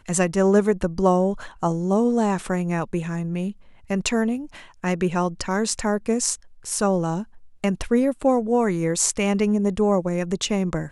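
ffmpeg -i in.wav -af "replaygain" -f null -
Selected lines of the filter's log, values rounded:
track_gain = +3.2 dB
track_peak = 0.465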